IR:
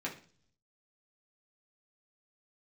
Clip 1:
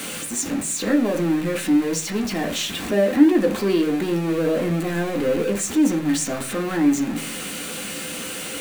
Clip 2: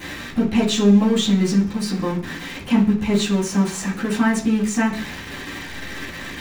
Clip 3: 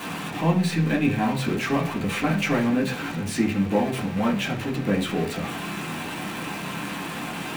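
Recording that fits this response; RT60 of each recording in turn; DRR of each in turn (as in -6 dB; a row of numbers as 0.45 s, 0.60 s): 3; 0.45 s, 0.45 s, 0.45 s; 2.0 dB, -11.5 dB, -4.5 dB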